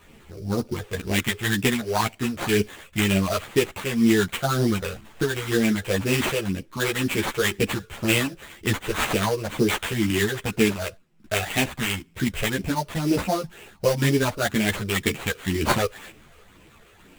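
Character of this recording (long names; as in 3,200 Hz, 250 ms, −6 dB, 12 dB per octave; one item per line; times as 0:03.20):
phaser sweep stages 8, 2 Hz, lowest notch 240–1,300 Hz
aliases and images of a low sample rate 5,300 Hz, jitter 20%
a shimmering, thickened sound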